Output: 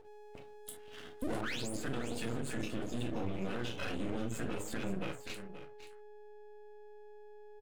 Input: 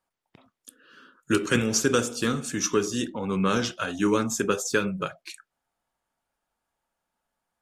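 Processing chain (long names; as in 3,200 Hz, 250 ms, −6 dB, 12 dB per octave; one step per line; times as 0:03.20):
spectral magnitudes quantised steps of 30 dB
downward compressor, threshold −29 dBFS, peak gain reduction 11.5 dB
0:01.22–0:01.72: sound drawn into the spectrogram rise 240–11,000 Hz −27 dBFS
phaser with its sweep stopped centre 2,500 Hz, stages 4
noise gate −56 dBFS, range −11 dB
steady tone 420 Hz −51 dBFS
convolution reverb, pre-delay 4 ms, DRR 0 dB
brickwall limiter −29.5 dBFS, peak gain reduction 16 dB
parametric band 12,000 Hz −9.5 dB 0.38 octaves
half-wave rectification
high-shelf EQ 3,300 Hz +11 dB, from 0:01.41 −2 dB
single-tap delay 528 ms −12 dB
level +3.5 dB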